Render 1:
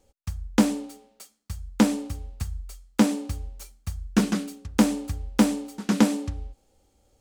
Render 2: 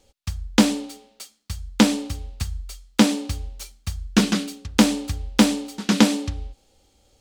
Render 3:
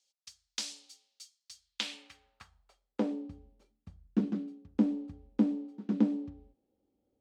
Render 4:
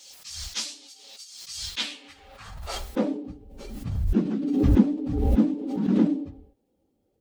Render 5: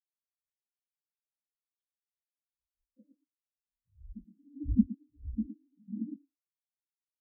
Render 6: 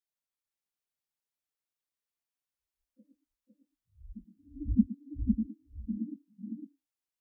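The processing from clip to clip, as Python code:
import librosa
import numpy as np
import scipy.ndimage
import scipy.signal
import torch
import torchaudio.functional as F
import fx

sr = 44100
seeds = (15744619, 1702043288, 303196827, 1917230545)

y1 = fx.peak_eq(x, sr, hz=3700.0, db=8.5, octaves=1.6)
y1 = y1 * librosa.db_to_amplitude(3.0)
y2 = fx.filter_sweep_bandpass(y1, sr, from_hz=5400.0, to_hz=280.0, start_s=1.53, end_s=3.3, q=1.6)
y2 = y2 * librosa.db_to_amplitude(-8.5)
y3 = fx.phase_scramble(y2, sr, seeds[0], window_ms=50)
y3 = fx.pre_swell(y3, sr, db_per_s=40.0)
y3 = y3 * librosa.db_to_amplitude(6.0)
y4 = y3 + 10.0 ** (-4.0 / 20.0) * np.pad(y3, (int(115 * sr / 1000.0), 0))[:len(y3)]
y4 = fx.spectral_expand(y4, sr, expansion=4.0)
y4 = y4 * librosa.db_to_amplitude(-8.5)
y5 = y4 + 10.0 ** (-3.5 / 20.0) * np.pad(y4, (int(505 * sr / 1000.0), 0))[:len(y4)]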